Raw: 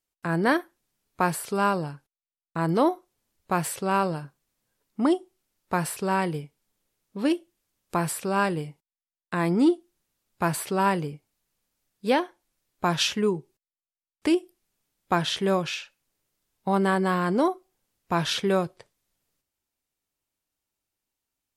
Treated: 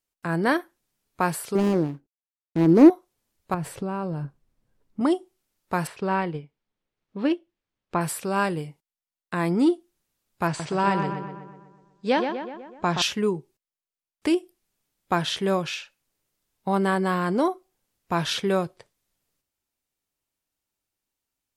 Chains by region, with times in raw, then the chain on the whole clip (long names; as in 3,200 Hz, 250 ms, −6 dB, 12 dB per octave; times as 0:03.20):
0:01.55–0:02.90: running median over 41 samples + parametric band 300 Hz +14 dB 1.1 octaves
0:03.54–0:05.01: spectral tilt −3 dB per octave + downward compressor 5 to 1, threshold −25 dBFS
0:05.87–0:08.01: low-pass filter 3,400 Hz + transient designer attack +1 dB, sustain −5 dB
0:10.47–0:13.02: Butterworth low-pass 7,600 Hz + feedback echo with a low-pass in the loop 124 ms, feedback 57%, low-pass 3,500 Hz, level −6 dB
whole clip: no processing